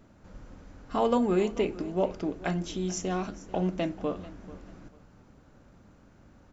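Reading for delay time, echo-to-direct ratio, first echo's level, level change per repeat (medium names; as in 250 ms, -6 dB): 440 ms, -17.5 dB, -18.0 dB, -11.5 dB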